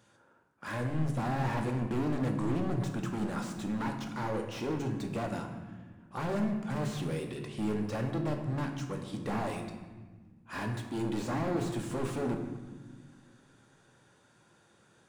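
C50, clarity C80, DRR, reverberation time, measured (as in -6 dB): 6.5 dB, 8.5 dB, 3.0 dB, 1.5 s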